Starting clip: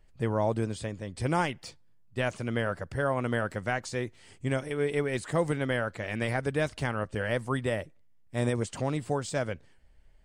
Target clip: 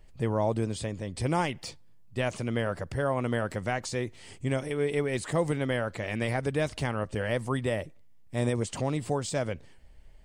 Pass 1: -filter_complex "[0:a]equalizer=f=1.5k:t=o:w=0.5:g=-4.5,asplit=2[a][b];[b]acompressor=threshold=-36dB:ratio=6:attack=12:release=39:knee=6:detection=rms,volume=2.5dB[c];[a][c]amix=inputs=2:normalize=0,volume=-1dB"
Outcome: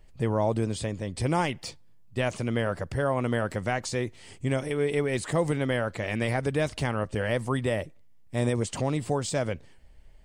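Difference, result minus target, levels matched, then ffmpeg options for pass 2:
compressor: peak gain reduction -7.5 dB
-filter_complex "[0:a]equalizer=f=1.5k:t=o:w=0.5:g=-4.5,asplit=2[a][b];[b]acompressor=threshold=-45dB:ratio=6:attack=12:release=39:knee=6:detection=rms,volume=2.5dB[c];[a][c]amix=inputs=2:normalize=0,volume=-1dB"

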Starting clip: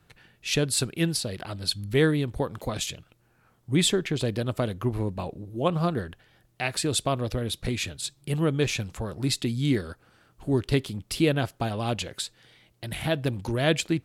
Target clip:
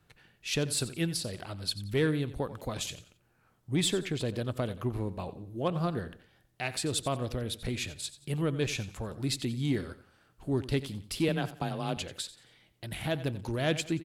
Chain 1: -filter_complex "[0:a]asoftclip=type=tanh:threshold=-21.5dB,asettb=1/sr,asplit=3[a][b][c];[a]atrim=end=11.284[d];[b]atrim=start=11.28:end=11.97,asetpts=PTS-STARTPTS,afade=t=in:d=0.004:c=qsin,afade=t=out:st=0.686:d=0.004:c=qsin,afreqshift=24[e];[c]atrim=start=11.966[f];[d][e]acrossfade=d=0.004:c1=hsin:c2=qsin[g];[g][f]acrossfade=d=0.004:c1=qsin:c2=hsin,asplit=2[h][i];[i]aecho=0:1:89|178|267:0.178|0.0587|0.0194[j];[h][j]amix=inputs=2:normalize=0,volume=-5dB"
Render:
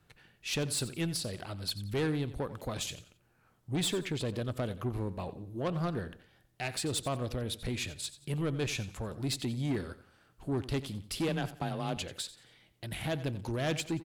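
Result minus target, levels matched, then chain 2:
soft clip: distortion +13 dB
-filter_complex "[0:a]asoftclip=type=tanh:threshold=-12dB,asettb=1/sr,asplit=3[a][b][c];[a]atrim=end=11.284[d];[b]atrim=start=11.28:end=11.97,asetpts=PTS-STARTPTS,afade=t=in:d=0.004:c=qsin,afade=t=out:st=0.686:d=0.004:c=qsin,afreqshift=24[e];[c]atrim=start=11.966[f];[d][e]acrossfade=d=0.004:c1=hsin:c2=qsin[g];[g][f]acrossfade=d=0.004:c1=qsin:c2=hsin,asplit=2[h][i];[i]aecho=0:1:89|178|267:0.178|0.0587|0.0194[j];[h][j]amix=inputs=2:normalize=0,volume=-5dB"

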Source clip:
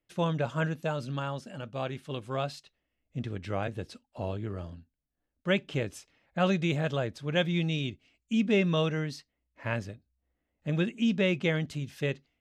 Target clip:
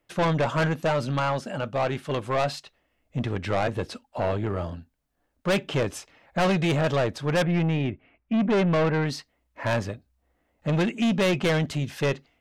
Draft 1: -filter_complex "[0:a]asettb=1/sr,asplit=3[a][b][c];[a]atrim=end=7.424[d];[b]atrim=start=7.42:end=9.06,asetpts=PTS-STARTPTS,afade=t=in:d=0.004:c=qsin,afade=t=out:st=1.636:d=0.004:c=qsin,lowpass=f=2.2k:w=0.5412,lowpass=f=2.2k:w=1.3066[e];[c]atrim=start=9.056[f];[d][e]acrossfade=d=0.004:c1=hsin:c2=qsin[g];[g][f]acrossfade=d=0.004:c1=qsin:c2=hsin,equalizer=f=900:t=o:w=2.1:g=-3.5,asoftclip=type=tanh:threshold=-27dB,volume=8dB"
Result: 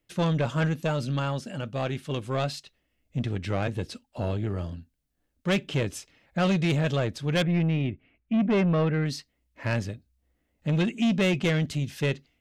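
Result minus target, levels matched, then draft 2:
1000 Hz band -5.0 dB
-filter_complex "[0:a]asettb=1/sr,asplit=3[a][b][c];[a]atrim=end=7.424[d];[b]atrim=start=7.42:end=9.06,asetpts=PTS-STARTPTS,afade=t=in:d=0.004:c=qsin,afade=t=out:st=1.636:d=0.004:c=qsin,lowpass=f=2.2k:w=0.5412,lowpass=f=2.2k:w=1.3066[e];[c]atrim=start=9.056[f];[d][e]acrossfade=d=0.004:c1=hsin:c2=qsin[g];[g][f]acrossfade=d=0.004:c1=qsin:c2=hsin,equalizer=f=900:t=o:w=2.1:g=7.5,asoftclip=type=tanh:threshold=-27dB,volume=8dB"

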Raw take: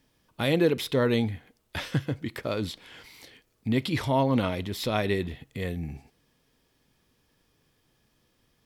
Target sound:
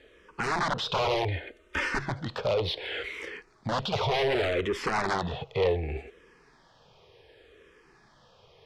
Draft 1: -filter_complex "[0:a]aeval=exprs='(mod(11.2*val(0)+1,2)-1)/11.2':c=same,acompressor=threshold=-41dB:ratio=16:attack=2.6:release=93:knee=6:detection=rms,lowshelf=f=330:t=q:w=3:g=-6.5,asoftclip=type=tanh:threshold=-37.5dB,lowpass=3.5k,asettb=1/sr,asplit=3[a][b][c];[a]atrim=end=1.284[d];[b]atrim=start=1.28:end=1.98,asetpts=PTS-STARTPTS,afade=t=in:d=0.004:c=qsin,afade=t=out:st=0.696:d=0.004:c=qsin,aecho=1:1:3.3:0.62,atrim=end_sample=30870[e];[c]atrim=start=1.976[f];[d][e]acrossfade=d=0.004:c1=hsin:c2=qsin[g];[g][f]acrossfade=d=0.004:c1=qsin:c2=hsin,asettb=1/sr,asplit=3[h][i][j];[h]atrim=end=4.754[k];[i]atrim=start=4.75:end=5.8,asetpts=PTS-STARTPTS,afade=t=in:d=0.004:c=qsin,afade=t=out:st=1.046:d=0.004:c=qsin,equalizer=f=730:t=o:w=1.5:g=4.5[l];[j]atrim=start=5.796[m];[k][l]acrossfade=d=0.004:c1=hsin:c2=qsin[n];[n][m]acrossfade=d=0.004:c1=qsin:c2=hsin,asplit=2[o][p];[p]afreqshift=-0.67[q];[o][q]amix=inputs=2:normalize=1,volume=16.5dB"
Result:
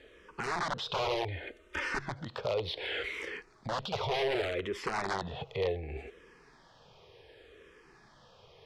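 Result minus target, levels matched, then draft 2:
compressor: peak gain reduction +10.5 dB
-filter_complex "[0:a]aeval=exprs='(mod(11.2*val(0)+1,2)-1)/11.2':c=same,acompressor=threshold=-30dB:ratio=16:attack=2.6:release=93:knee=6:detection=rms,lowshelf=f=330:t=q:w=3:g=-6.5,asoftclip=type=tanh:threshold=-37.5dB,lowpass=3.5k,asettb=1/sr,asplit=3[a][b][c];[a]atrim=end=1.284[d];[b]atrim=start=1.28:end=1.98,asetpts=PTS-STARTPTS,afade=t=in:d=0.004:c=qsin,afade=t=out:st=0.696:d=0.004:c=qsin,aecho=1:1:3.3:0.62,atrim=end_sample=30870[e];[c]atrim=start=1.976[f];[d][e]acrossfade=d=0.004:c1=hsin:c2=qsin[g];[g][f]acrossfade=d=0.004:c1=qsin:c2=hsin,asettb=1/sr,asplit=3[h][i][j];[h]atrim=end=4.754[k];[i]atrim=start=4.75:end=5.8,asetpts=PTS-STARTPTS,afade=t=in:d=0.004:c=qsin,afade=t=out:st=1.046:d=0.004:c=qsin,equalizer=f=730:t=o:w=1.5:g=4.5[l];[j]atrim=start=5.796[m];[k][l]acrossfade=d=0.004:c1=hsin:c2=qsin[n];[n][m]acrossfade=d=0.004:c1=qsin:c2=hsin,asplit=2[o][p];[p]afreqshift=-0.67[q];[o][q]amix=inputs=2:normalize=1,volume=16.5dB"

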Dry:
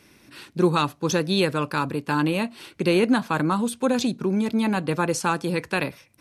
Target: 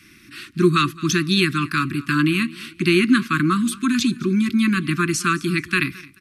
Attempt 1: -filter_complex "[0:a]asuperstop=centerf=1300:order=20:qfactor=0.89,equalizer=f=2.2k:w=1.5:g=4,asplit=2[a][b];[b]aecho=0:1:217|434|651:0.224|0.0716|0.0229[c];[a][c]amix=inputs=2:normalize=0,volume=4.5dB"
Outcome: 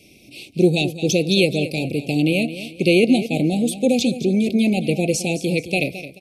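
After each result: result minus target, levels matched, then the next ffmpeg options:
1000 Hz band -9.0 dB; echo-to-direct +8 dB
-filter_complex "[0:a]asuperstop=centerf=640:order=20:qfactor=0.89,equalizer=f=2.2k:w=1.5:g=4,asplit=2[a][b];[b]aecho=0:1:217|434|651:0.224|0.0716|0.0229[c];[a][c]amix=inputs=2:normalize=0,volume=4.5dB"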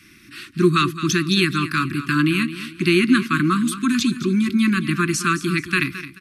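echo-to-direct +8 dB
-filter_complex "[0:a]asuperstop=centerf=640:order=20:qfactor=0.89,equalizer=f=2.2k:w=1.5:g=4,asplit=2[a][b];[b]aecho=0:1:217|434:0.0891|0.0285[c];[a][c]amix=inputs=2:normalize=0,volume=4.5dB"

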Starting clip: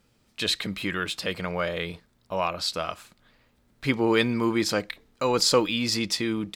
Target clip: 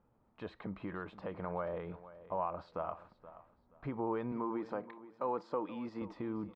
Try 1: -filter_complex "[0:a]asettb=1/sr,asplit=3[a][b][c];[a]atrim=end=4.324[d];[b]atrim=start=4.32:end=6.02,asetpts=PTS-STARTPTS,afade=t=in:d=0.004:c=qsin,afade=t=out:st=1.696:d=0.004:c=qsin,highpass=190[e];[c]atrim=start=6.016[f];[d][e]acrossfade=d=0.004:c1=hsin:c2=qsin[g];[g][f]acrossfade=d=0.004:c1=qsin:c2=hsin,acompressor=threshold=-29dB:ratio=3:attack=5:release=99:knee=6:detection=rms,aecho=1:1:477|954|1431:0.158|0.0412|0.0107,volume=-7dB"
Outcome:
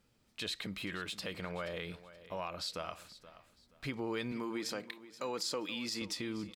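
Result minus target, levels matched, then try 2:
1000 Hz band -6.0 dB
-filter_complex "[0:a]asettb=1/sr,asplit=3[a][b][c];[a]atrim=end=4.324[d];[b]atrim=start=4.32:end=6.02,asetpts=PTS-STARTPTS,afade=t=in:d=0.004:c=qsin,afade=t=out:st=1.696:d=0.004:c=qsin,highpass=190[e];[c]atrim=start=6.016[f];[d][e]acrossfade=d=0.004:c1=hsin:c2=qsin[g];[g][f]acrossfade=d=0.004:c1=qsin:c2=hsin,acompressor=threshold=-29dB:ratio=3:attack=5:release=99:knee=6:detection=rms,lowpass=f=960:t=q:w=2.2,aecho=1:1:477|954|1431:0.158|0.0412|0.0107,volume=-7dB"

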